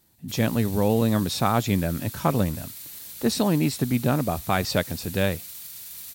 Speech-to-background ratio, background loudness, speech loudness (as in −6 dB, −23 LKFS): 12.5 dB, −37.0 LKFS, −24.5 LKFS